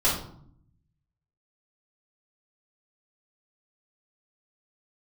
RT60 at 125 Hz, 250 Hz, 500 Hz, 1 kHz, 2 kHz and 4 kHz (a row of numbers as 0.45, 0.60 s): 1.3, 1.0, 0.65, 0.60, 0.45, 0.40 s